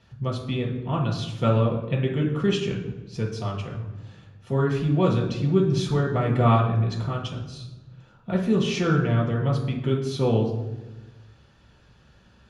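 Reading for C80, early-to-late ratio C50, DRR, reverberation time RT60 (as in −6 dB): 8.0 dB, 5.0 dB, −3.5 dB, 1.1 s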